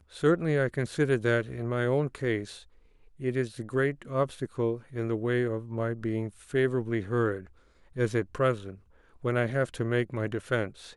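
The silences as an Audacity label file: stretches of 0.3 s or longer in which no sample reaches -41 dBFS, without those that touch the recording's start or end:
2.620000	3.200000	silence
7.470000	7.960000	silence
8.750000	9.240000	silence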